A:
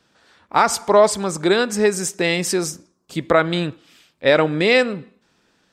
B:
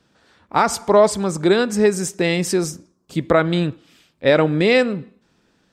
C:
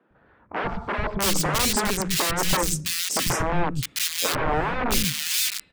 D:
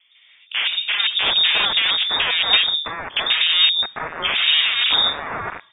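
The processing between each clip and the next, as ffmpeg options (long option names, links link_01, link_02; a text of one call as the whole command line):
ffmpeg -i in.wav -af "lowshelf=frequency=420:gain=7.5,volume=-2.5dB" out.wav
ffmpeg -i in.wav -filter_complex "[0:a]aeval=exprs='(mod(6.68*val(0)+1,2)-1)/6.68':channel_layout=same,lowshelf=frequency=83:gain=10,acrossover=split=220|2100[link_01][link_02][link_03];[link_01]adelay=100[link_04];[link_03]adelay=660[link_05];[link_04][link_02][link_05]amix=inputs=3:normalize=0" out.wav
ffmpeg -i in.wav -af "lowpass=frequency=3100:width_type=q:width=0.5098,lowpass=frequency=3100:width_type=q:width=0.6013,lowpass=frequency=3100:width_type=q:width=0.9,lowpass=frequency=3100:width_type=q:width=2.563,afreqshift=-3700,volume=6dB" out.wav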